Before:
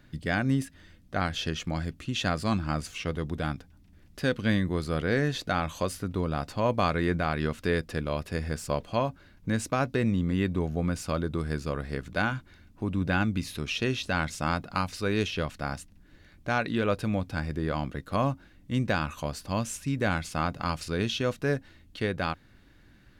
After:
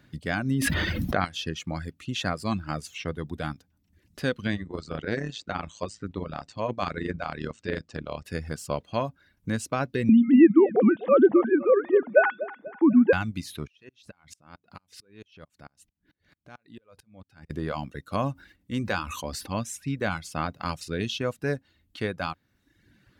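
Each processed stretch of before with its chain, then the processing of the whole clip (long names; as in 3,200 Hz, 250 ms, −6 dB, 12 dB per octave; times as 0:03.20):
0:00.51–0:01.25: parametric band 7,600 Hz −8.5 dB 0.99 octaves + envelope flattener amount 100%
0:04.47–0:08.25: Butterworth low-pass 8,500 Hz 96 dB per octave + amplitude modulation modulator 110 Hz, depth 60%
0:10.09–0:13.13: three sine waves on the formant tracks + parametric band 440 Hz +14.5 dB 2.5 octaves + repeating echo 245 ms, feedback 38%, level −13 dB
0:13.67–0:17.50: downward compressor, threshold −38 dBFS + tremolo with a ramp in dB swelling 4.5 Hz, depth 27 dB
0:18.33–0:19.55: parametric band 140 Hz −12.5 dB 0.2 octaves + notch filter 650 Hz, Q 8.2 + level that may fall only so fast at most 41 dB per second
whole clip: high-pass filter 67 Hz; reverb reduction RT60 0.86 s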